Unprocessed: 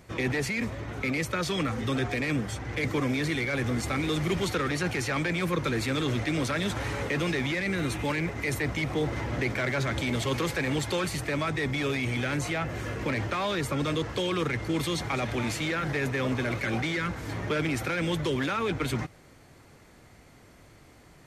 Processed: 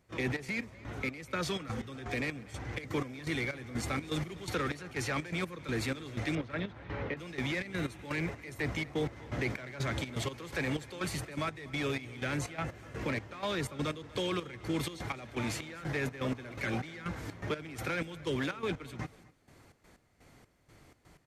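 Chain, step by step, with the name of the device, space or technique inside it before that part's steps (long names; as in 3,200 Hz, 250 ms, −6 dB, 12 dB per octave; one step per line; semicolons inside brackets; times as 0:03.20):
0:06.35–0:07.17: high-frequency loss of the air 300 metres
trance gate with a delay (gate pattern ".xx.x..xx." 124 BPM −12 dB; repeating echo 245 ms, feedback 31%, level −21.5 dB)
level −4.5 dB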